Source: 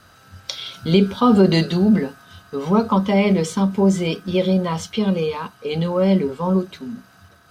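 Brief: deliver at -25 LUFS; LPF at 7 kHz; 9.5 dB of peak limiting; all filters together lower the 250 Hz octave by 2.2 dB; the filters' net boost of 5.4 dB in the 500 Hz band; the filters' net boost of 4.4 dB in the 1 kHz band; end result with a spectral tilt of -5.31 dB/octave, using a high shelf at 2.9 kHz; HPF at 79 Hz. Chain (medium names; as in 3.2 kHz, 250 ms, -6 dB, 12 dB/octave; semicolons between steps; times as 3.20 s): high-pass 79 Hz; low-pass 7 kHz; peaking EQ 250 Hz -5 dB; peaking EQ 500 Hz +7.5 dB; peaking EQ 1 kHz +3 dB; treble shelf 2.9 kHz +4 dB; trim -5 dB; peak limiter -15 dBFS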